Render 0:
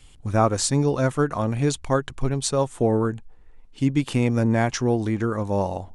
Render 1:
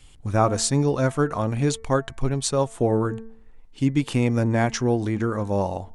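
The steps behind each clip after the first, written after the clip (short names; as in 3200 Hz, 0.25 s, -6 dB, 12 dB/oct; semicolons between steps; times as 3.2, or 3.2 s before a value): de-hum 224.2 Hz, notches 10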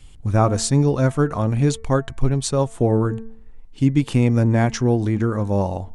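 low shelf 270 Hz +7 dB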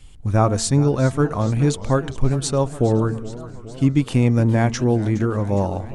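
warbling echo 0.414 s, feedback 69%, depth 166 cents, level -17 dB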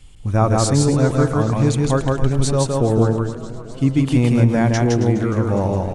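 loudspeakers at several distances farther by 56 m -2 dB, 93 m -12 dB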